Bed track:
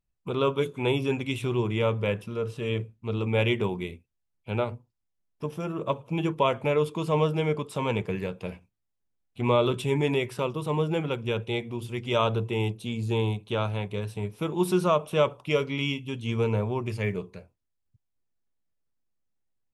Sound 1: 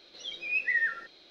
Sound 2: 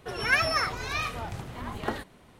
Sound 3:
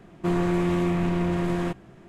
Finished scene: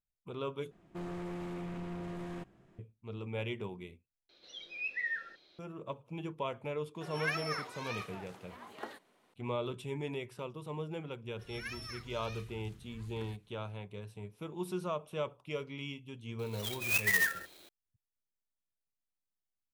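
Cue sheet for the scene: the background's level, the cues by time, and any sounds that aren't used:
bed track -13.5 dB
0.71 replace with 3 -14.5 dB + overloaded stage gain 23.5 dB
4.29 replace with 1 -8.5 dB
6.95 add 2 -11.5 dB + HPF 310 Hz
11.33 add 2 -0.5 dB + passive tone stack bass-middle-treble 6-0-2
16.39 add 1 -1 dB + clock jitter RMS 0.034 ms

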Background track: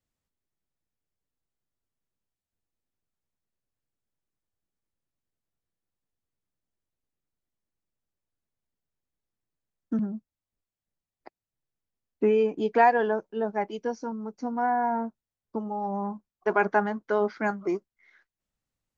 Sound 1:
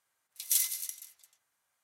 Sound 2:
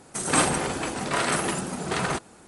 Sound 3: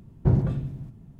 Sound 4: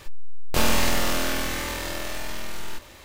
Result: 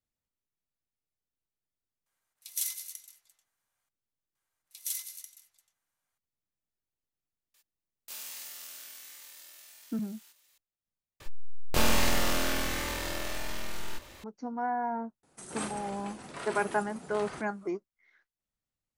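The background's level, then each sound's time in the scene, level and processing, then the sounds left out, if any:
background track -6 dB
2.06 add 1 -5 dB
4.35 add 1 -7.5 dB
7.54 add 4 -14 dB + differentiator
11.2 replace with 4 -4 dB
15.23 add 2 -16.5 dB + doubler 33 ms -13 dB
not used: 3

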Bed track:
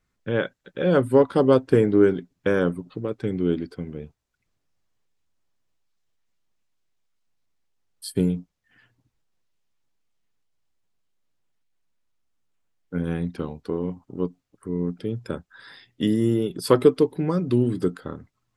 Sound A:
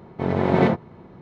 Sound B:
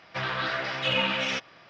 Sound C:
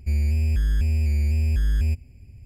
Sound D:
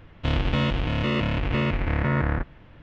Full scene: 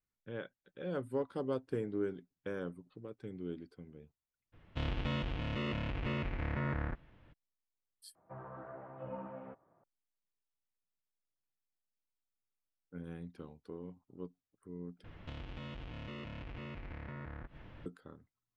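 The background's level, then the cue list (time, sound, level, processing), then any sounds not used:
bed track -19 dB
4.52 add D -12.5 dB, fades 0.02 s
8.15 replace with B -13 dB + LPF 1000 Hz 24 dB/oct
15.04 replace with D -3.5 dB + compressor, threshold -40 dBFS
not used: A, C

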